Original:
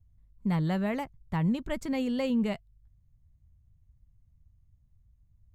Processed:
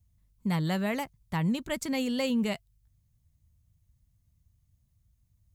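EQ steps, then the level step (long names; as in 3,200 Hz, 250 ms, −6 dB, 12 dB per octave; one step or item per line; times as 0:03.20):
high-pass filter 90 Hz 6 dB per octave
high-shelf EQ 3,100 Hz +12 dB
0.0 dB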